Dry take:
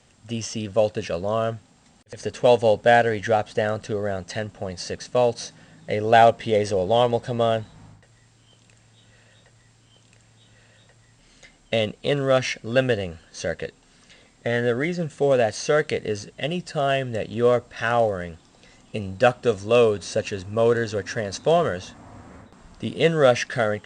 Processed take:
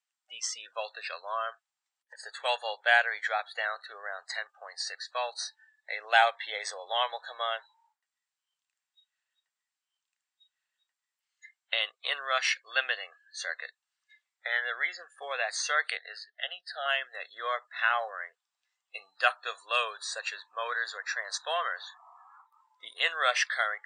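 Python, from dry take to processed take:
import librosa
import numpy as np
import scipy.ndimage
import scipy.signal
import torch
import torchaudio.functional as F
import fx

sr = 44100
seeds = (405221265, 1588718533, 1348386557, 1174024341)

y = scipy.signal.sosfilt(scipy.signal.butter(4, 970.0, 'highpass', fs=sr, output='sos'), x)
y = fx.noise_reduce_blind(y, sr, reduce_db=28)
y = fx.fixed_phaser(y, sr, hz=1600.0, stages=8, at=(15.97, 16.86))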